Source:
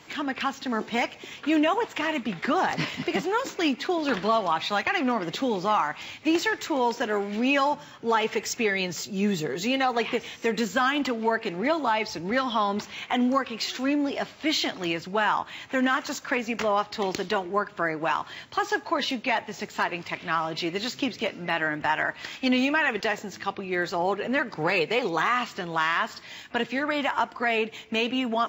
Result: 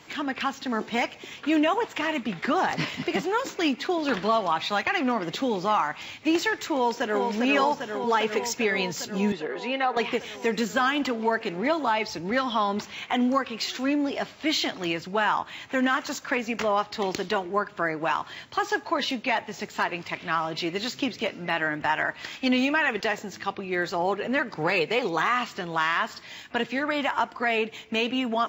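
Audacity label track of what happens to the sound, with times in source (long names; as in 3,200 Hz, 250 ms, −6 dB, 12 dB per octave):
6.740000	7.240000	delay throw 400 ms, feedback 80%, level −4.5 dB
9.320000	9.970000	band-pass filter 350–2,800 Hz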